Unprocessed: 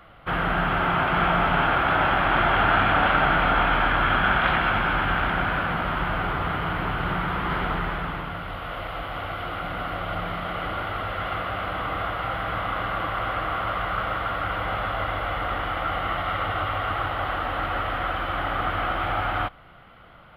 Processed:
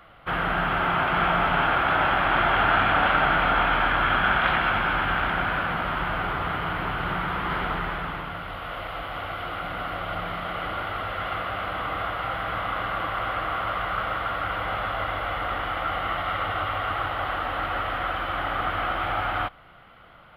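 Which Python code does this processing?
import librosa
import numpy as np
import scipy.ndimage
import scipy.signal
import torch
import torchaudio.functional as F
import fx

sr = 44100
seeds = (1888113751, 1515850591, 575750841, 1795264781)

y = fx.low_shelf(x, sr, hz=420.0, db=-4.0)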